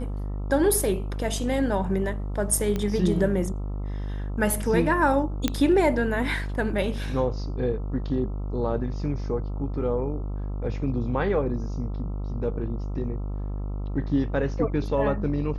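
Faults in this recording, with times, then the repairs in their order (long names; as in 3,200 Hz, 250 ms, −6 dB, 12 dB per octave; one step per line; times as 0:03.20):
mains buzz 50 Hz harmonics 27 −30 dBFS
0:02.76: click −15 dBFS
0:05.48: click −9 dBFS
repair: click removal
hum removal 50 Hz, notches 27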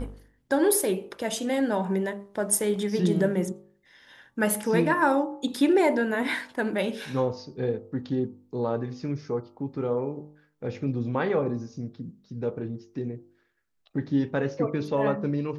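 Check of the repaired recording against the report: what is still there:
0:02.76: click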